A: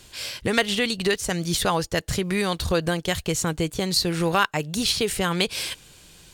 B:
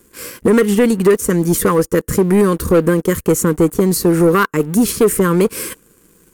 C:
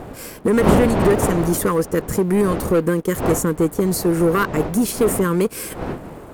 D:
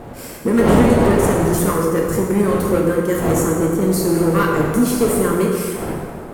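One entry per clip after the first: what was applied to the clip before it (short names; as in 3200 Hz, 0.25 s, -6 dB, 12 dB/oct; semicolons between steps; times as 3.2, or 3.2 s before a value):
EQ curve 130 Hz 0 dB, 210 Hz +12 dB, 490 Hz +12 dB, 710 Hz -16 dB, 1100 Hz +7 dB, 2000 Hz -1 dB, 3800 Hz -15 dB, 6500 Hz -1 dB, 12000 Hz +10 dB; sample leveller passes 2; gain -3 dB
wind noise 550 Hz -20 dBFS; gain -5 dB
plate-style reverb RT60 1.9 s, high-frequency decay 0.65×, DRR -2.5 dB; gain -2.5 dB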